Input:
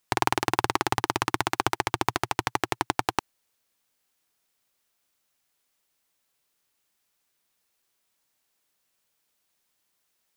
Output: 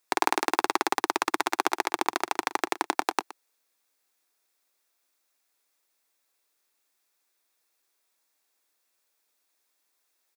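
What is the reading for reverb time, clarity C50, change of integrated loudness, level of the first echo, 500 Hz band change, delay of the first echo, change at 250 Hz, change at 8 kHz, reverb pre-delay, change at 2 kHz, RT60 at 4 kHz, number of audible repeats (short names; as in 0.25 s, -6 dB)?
none, none, -0.5 dB, -17.5 dB, 0.0 dB, 0.119 s, -1.5 dB, 0.0 dB, none, 0.0 dB, none, 1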